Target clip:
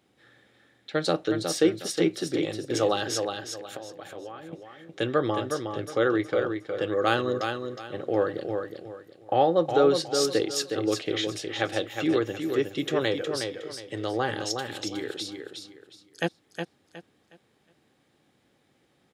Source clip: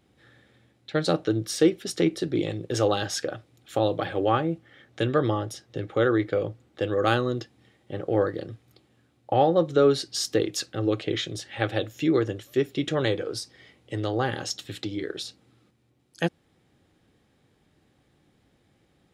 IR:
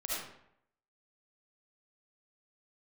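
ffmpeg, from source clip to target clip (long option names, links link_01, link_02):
-filter_complex "[0:a]asettb=1/sr,asplit=3[link_01][link_02][link_03];[link_01]atrim=end=3.174[link_04];[link_02]atrim=start=3.17:end=4.53,asetpts=PTS-STARTPTS,afade=type=in:duration=0.004:curve=qsin,afade=type=out:start_time=1.356:duration=0.004:curve=qsin,acompressor=threshold=-36dB:ratio=12[link_05];[link_03]atrim=start=4.526[link_06];[link_04][link_05]acrossfade=duration=0.004:curve1=hsin:curve2=qsin[link_07];[link_07][link_06]acrossfade=duration=0.004:curve1=qsin:curve2=hsin,highpass=frequency=260:poles=1,aecho=1:1:364|728|1092|1456:0.501|0.14|0.0393|0.011"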